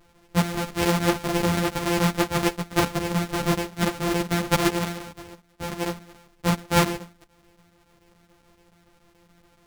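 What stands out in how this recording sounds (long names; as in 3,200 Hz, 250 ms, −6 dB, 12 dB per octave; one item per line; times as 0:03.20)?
a buzz of ramps at a fixed pitch in blocks of 256 samples
chopped level 7 Hz, depth 65%, duty 85%
a shimmering, thickened sound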